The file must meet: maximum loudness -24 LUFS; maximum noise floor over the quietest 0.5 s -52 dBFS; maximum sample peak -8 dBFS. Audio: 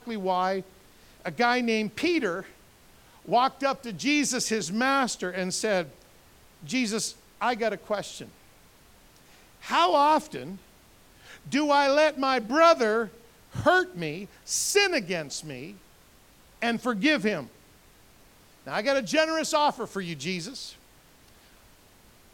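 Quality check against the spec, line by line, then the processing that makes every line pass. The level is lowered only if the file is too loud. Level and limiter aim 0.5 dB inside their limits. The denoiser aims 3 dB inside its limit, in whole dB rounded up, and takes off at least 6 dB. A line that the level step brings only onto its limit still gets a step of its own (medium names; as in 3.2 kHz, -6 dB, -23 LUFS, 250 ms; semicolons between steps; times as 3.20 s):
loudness -26.0 LUFS: pass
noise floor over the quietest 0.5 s -56 dBFS: pass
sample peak -6.5 dBFS: fail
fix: peak limiter -8.5 dBFS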